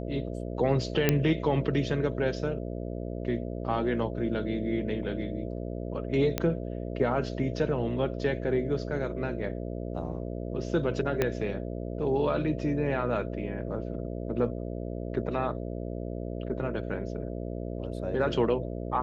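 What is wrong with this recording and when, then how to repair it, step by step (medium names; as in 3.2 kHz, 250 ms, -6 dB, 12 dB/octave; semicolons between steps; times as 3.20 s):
buzz 60 Hz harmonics 11 -35 dBFS
1.09 s: pop -8 dBFS
6.38 s: pop -12 dBFS
11.22 s: pop -12 dBFS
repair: de-click; de-hum 60 Hz, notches 11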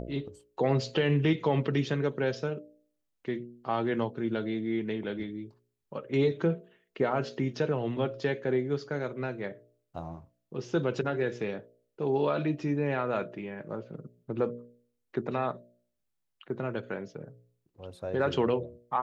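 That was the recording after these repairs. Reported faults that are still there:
11.22 s: pop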